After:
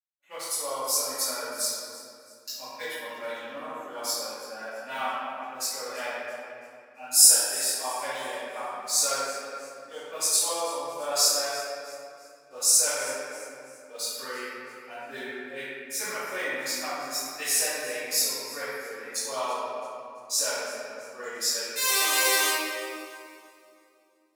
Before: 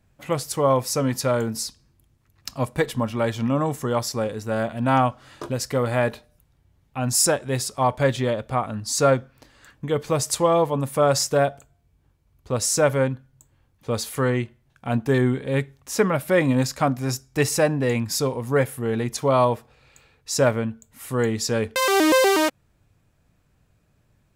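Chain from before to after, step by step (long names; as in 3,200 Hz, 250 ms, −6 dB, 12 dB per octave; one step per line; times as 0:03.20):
adaptive Wiener filter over 9 samples
high-pass filter 290 Hz 12 dB per octave
noise gate −46 dBFS, range −20 dB
noise reduction from a noise print of the clip's start 9 dB
first difference
delay with a high-pass on its return 334 ms, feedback 39%, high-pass 3,600 Hz, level −18 dB
convolution reverb RT60 2.5 s, pre-delay 4 ms, DRR −18 dB
level −13 dB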